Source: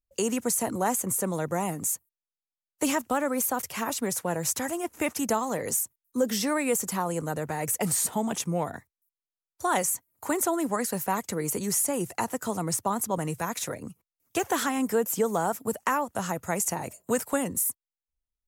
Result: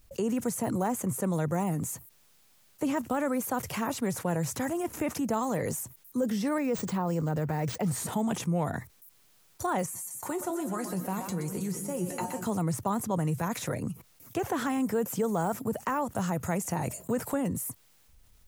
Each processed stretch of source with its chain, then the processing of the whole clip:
6.58–7.88 s: distance through air 51 m + careless resampling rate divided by 3×, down none, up hold
9.86–12.46 s: dynamic bell 1.9 kHz, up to -4 dB, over -44 dBFS, Q 2.3 + feedback comb 180 Hz, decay 0.15 s, mix 80% + two-band feedback delay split 470 Hz, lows 198 ms, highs 122 ms, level -11 dB
whole clip: de-esser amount 90%; peaking EQ 130 Hz +8 dB 1.3 oct; level flattener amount 50%; trim -5 dB

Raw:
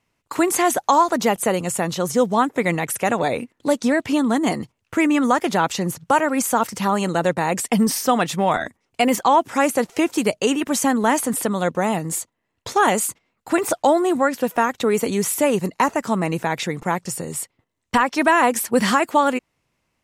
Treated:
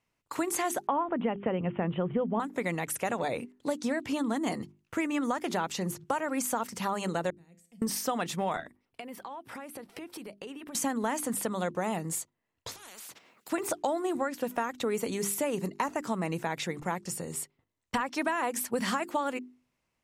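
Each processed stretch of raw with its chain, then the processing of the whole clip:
0.87–2.40 s: steep low-pass 3.2 kHz 96 dB/octave + bass shelf 490 Hz +9 dB
7.30–7.82 s: amplifier tone stack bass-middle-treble 10-0-1 + feedback comb 170 Hz, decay 0.59 s, mix 70%
8.60–10.75 s: peaking EQ 6.8 kHz -13.5 dB 0.46 oct + compression 12:1, threshold -30 dBFS
12.71–13.52 s: high-pass 250 Hz + compression 8:1, threshold -31 dBFS + spectrum-flattening compressor 4:1
whole clip: hum notches 50/100/150/200/250/300/350/400 Hz; compression, threshold -18 dBFS; trim -8 dB

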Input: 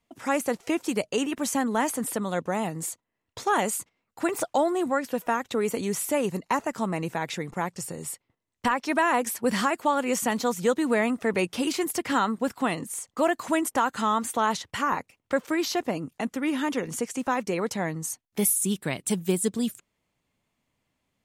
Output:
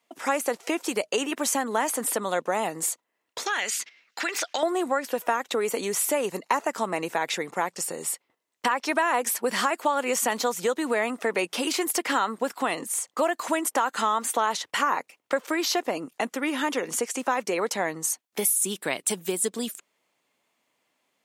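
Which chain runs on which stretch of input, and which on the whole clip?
3.46–4.63 s: high-order bell 3.1 kHz +15.5 dB 2.4 oct + compression 4:1, threshold -32 dBFS
whole clip: compression, threshold -25 dBFS; high-pass 390 Hz 12 dB/octave; trim +6 dB

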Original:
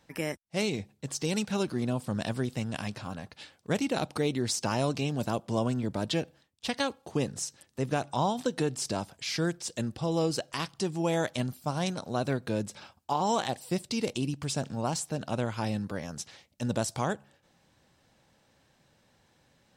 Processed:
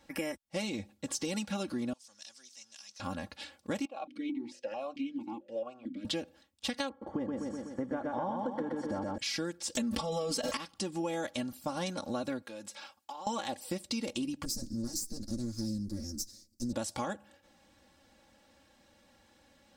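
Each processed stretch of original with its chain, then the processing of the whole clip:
1.93–3.00 s: jump at every zero crossing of -46 dBFS + band-pass filter 5.9 kHz, Q 4.4
3.85–6.05 s: hum notches 50/100/150/200/250/300/350/400 Hz + stepped vowel filter 4.5 Hz
6.89–9.18 s: Savitzky-Golay filter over 41 samples + feedback delay 124 ms, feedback 56%, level -3 dB
9.75–10.57 s: comb 4.5 ms, depth 95% + level flattener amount 100%
12.42–13.27 s: high-pass 810 Hz 6 dB/octave + compression 12:1, threshold -41 dBFS
14.45–16.73 s: comb filter that takes the minimum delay 9.1 ms + FFT filter 320 Hz 0 dB, 830 Hz -27 dB, 1.7 kHz -23 dB, 3 kHz -27 dB, 4.8 kHz +5 dB, 9.8 kHz 0 dB
whole clip: comb 3.6 ms, depth 79%; compression, threshold -32 dBFS

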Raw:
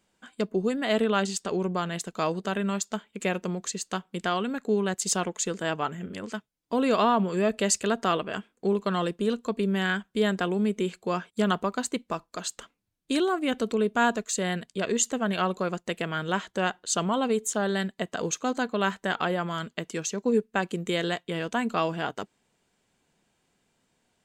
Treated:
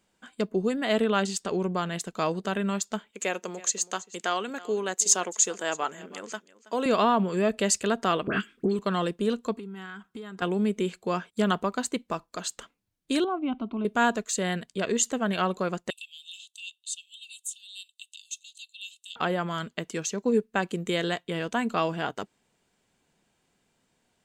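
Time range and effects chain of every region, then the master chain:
3.11–6.86 s: high-pass 370 Hz + peaking EQ 6.6 kHz +10 dB 0.36 oct + delay 325 ms -19 dB
8.27–8.79 s: high-order bell 690 Hz -11.5 dB 1.3 oct + phase dispersion highs, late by 73 ms, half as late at 1.9 kHz + three bands compressed up and down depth 100%
9.56–10.42 s: peaking EQ 1.2 kHz +13 dB 0.34 oct + compression 16:1, threshold -35 dBFS + comb of notches 590 Hz
13.24–13.85 s: inverse Chebyshev low-pass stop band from 10 kHz, stop band 70 dB + peaking EQ 470 Hz -5.5 dB 0.34 oct + static phaser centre 480 Hz, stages 6
15.90–19.16 s: rippled Chebyshev high-pass 2.6 kHz, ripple 9 dB + three bands compressed up and down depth 40%
whole clip: none

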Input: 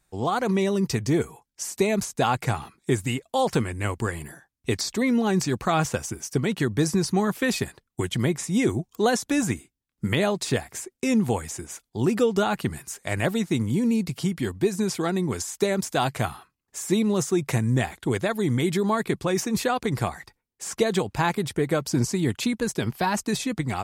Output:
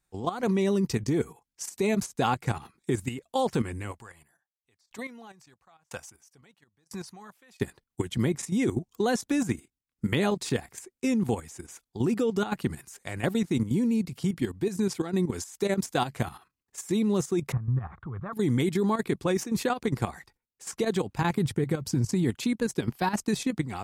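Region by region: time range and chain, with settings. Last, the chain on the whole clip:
3.91–7.60 s: resonant low shelf 510 Hz -7 dB, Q 1.5 + sawtooth tremolo in dB decaying 1 Hz, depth 39 dB
17.52–18.33 s: resonant low shelf 190 Hz +12 dB, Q 1.5 + compression 2.5:1, threshold -30 dBFS + resonant low-pass 1.2 kHz, resonance Q 7.6
21.21–22.24 s: peaking EQ 100 Hz +14 dB 1.1 oct + compression 2.5:1, threshold -20 dBFS + high-pass 42 Hz 6 dB/octave
whole clip: band-stop 630 Hz, Q 12; dynamic bell 260 Hz, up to +4 dB, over -32 dBFS, Q 0.74; level held to a coarse grid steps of 11 dB; trim -2 dB

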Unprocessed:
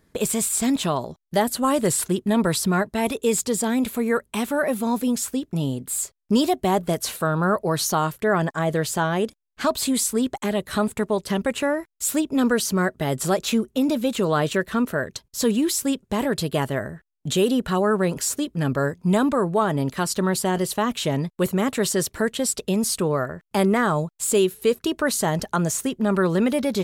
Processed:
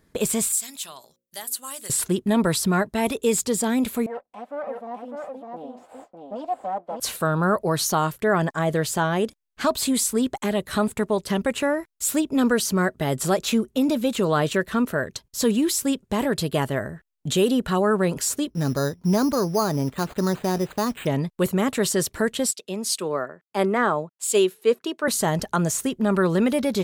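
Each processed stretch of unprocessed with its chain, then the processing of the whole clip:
0.52–1.90 s: pre-emphasis filter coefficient 0.97 + hum notches 60/120/180/240/300/360/420/480/540 Hz
4.06–7.00 s: comb filter that takes the minimum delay 3.9 ms + band-pass filter 690 Hz, Q 3.7 + delay 604 ms -3.5 dB
18.50–21.07 s: block-companded coder 5-bit + tape spacing loss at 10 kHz 26 dB + careless resampling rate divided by 8×, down none, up hold
22.51–25.08 s: high-pass 270 Hz + treble shelf 7.8 kHz -10 dB + three bands expanded up and down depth 100%
whole clip: none

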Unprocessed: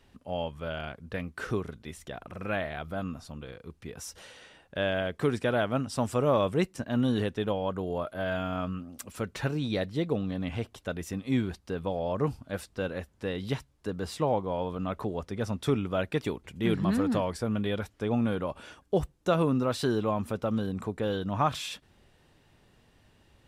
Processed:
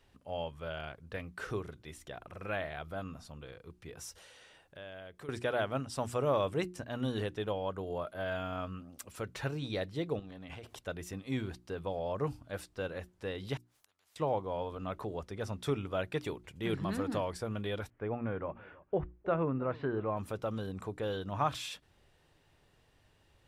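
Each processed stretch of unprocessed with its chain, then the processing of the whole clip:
4.13–5.29 s: treble shelf 6.4 kHz +4.5 dB + compression 2:1, threshold -50 dBFS
10.19–10.79 s: high-pass 130 Hz 6 dB/octave + transient shaper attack +7 dB, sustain +12 dB + compression 4:1, threshold -38 dBFS
13.57–14.16 s: high-order bell 1.1 kHz +8 dB + inverted gate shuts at -36 dBFS, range -29 dB + spectrum-flattening compressor 10:1
17.90–20.17 s: Chebyshev low-pass 2.1 kHz, order 3 + delay 315 ms -21.5 dB
whole clip: peaking EQ 220 Hz -6.5 dB 0.61 oct; hum notches 60/120/180/240/300/360 Hz; trim -4.5 dB

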